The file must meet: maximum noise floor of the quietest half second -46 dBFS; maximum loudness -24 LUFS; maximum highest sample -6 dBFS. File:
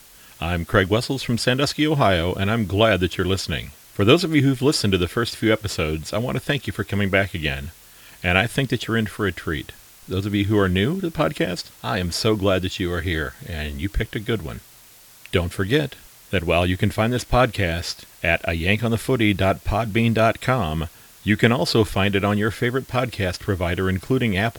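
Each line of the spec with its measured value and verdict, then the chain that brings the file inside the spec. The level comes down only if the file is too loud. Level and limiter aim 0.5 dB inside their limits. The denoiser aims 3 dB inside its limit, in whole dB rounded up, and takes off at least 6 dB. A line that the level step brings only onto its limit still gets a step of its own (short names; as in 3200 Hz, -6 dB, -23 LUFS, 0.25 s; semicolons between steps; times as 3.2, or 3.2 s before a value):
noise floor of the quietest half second -48 dBFS: OK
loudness -21.5 LUFS: fail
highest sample -2.0 dBFS: fail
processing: gain -3 dB; limiter -6.5 dBFS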